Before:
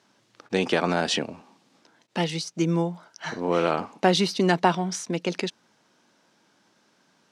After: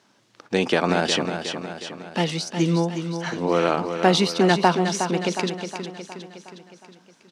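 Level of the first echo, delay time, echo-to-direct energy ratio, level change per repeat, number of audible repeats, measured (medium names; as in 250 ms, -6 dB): -8.0 dB, 363 ms, -6.5 dB, -5.5 dB, 6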